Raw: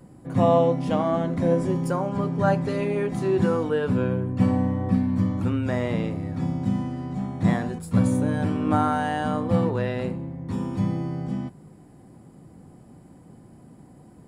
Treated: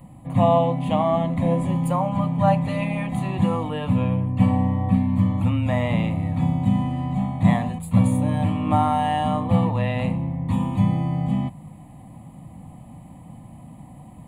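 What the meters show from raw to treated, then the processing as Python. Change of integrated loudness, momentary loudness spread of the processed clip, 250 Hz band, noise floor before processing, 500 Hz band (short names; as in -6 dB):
+2.5 dB, 6 LU, +2.0 dB, -50 dBFS, -1.5 dB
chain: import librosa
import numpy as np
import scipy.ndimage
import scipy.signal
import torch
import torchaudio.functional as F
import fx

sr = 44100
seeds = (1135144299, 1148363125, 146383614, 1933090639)

p1 = fx.rider(x, sr, range_db=10, speed_s=0.5)
p2 = x + (p1 * 10.0 ** (0.0 / 20.0))
y = fx.fixed_phaser(p2, sr, hz=1500.0, stages=6)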